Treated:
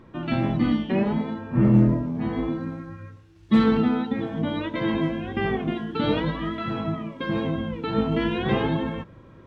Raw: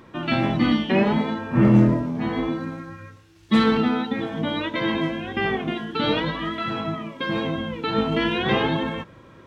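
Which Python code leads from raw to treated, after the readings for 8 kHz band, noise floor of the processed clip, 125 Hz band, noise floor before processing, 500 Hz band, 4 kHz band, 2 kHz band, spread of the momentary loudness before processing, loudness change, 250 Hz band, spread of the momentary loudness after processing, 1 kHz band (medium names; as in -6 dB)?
no reading, -49 dBFS, 0.0 dB, -49 dBFS, -2.0 dB, -7.5 dB, -6.0 dB, 11 LU, -2.0 dB, -1.0 dB, 11 LU, -4.5 dB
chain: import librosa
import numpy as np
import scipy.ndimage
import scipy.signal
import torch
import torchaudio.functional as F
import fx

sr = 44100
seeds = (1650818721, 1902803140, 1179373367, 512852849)

y = fx.tilt_eq(x, sr, slope=-2.0)
y = fx.rider(y, sr, range_db=3, speed_s=2.0)
y = y * librosa.db_to_amplitude(-6.0)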